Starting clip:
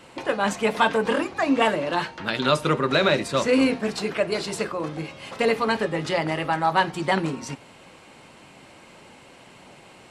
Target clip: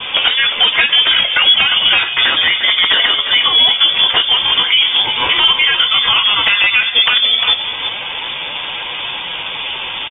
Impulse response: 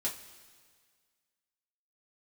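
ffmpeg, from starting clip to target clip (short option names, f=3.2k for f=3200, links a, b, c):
-filter_complex "[0:a]bandreject=f=1.5k:w=12,adynamicequalizer=threshold=0.0126:dfrequency=1300:dqfactor=5.3:tfrequency=1300:tqfactor=5.3:attack=5:release=100:ratio=0.375:range=2:mode=boostabove:tftype=bell,acompressor=threshold=-34dB:ratio=10,flanger=delay=4.8:depth=6.6:regen=-28:speed=0.27:shape=sinusoidal,aresample=16000,aeval=exprs='(mod(29.9*val(0)+1,2)-1)/29.9':c=same,aresample=44100,asetrate=57191,aresample=44100,atempo=0.771105,flanger=delay=8:depth=2.9:regen=-74:speed=1.4:shape=triangular,asplit=2[a][b];[b]aecho=0:1:352:0.299[c];[a][c]amix=inputs=2:normalize=0,lowpass=f=3.1k:t=q:w=0.5098,lowpass=f=3.1k:t=q:w=0.6013,lowpass=f=3.1k:t=q:w=0.9,lowpass=f=3.1k:t=q:w=2.563,afreqshift=-3700,alimiter=level_in=35.5dB:limit=-1dB:release=50:level=0:latency=1,volume=-1dB"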